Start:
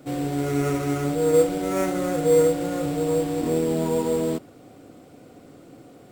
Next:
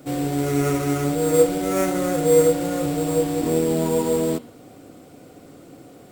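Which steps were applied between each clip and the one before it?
high shelf 6500 Hz +5 dB; de-hum 118.4 Hz, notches 37; gain +2.5 dB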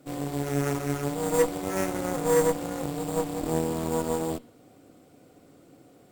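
added harmonics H 6 -16 dB, 7 -28 dB, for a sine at -4.5 dBFS; gain -7 dB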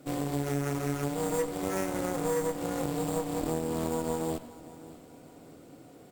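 compressor, threshold -29 dBFS, peak gain reduction 11.5 dB; feedback echo 0.591 s, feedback 45%, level -19 dB; reverb RT60 0.90 s, pre-delay 92 ms, DRR 14.5 dB; gain +2.5 dB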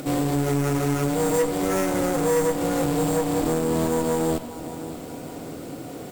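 in parallel at -0.5 dB: upward compressor, threshold -33 dBFS; on the sum: requantised 10-bit, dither triangular; soft clip -19.5 dBFS, distortion -13 dB; gain +5 dB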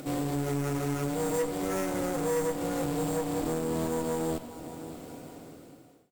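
ending faded out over 1.03 s; gain -7.5 dB

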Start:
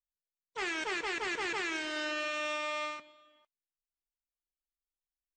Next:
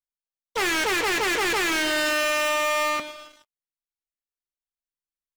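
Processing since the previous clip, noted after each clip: sample leveller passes 5; gain +3.5 dB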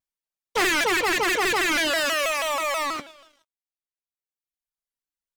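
reverb removal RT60 1.5 s; shaped vibrato saw down 6.2 Hz, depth 160 cents; gain +3 dB

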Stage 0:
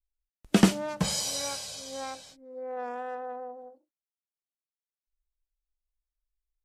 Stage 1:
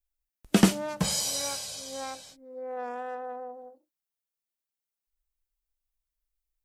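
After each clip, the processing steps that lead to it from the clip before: high shelf 11000 Hz +9 dB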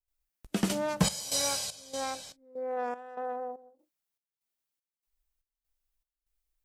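step gate ".xxxxx.." 194 bpm -12 dB; gain +2.5 dB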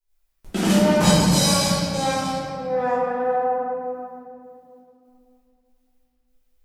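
reverb RT60 2.7 s, pre-delay 5 ms, DRR -12.5 dB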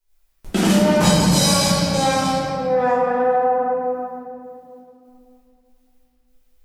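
compressor 2:1, threshold -22 dBFS, peak gain reduction 6.5 dB; gain +6.5 dB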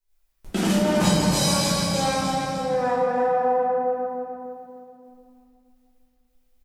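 feedback echo 0.302 s, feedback 33%, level -7 dB; gain -5.5 dB

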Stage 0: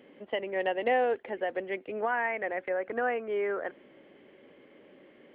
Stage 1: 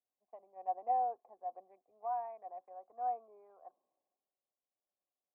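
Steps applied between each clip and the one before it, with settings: Wiener smoothing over 15 samples; vocal tract filter a; three-band expander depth 70%; gain -3.5 dB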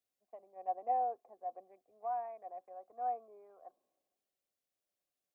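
bell 920 Hz -8 dB 0.6 oct; gain +3.5 dB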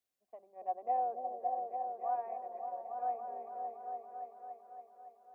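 repeats that get brighter 0.281 s, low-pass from 400 Hz, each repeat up 1 oct, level 0 dB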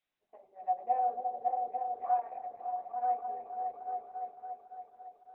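reverb RT60 0.45 s, pre-delay 3 ms, DRR 2 dB; Opus 8 kbps 48000 Hz

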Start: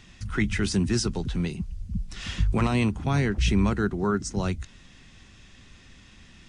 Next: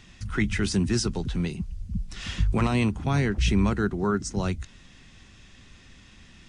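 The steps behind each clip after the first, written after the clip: nothing audible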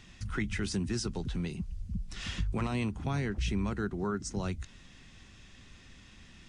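compressor 2:1, threshold -30 dBFS, peak gain reduction 7.5 dB; gain -3 dB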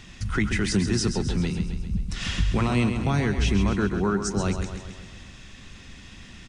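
feedback echo 0.133 s, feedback 57%, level -8 dB; gain +8.5 dB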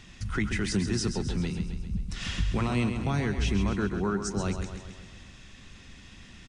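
downsampling 32000 Hz; gain -4.5 dB

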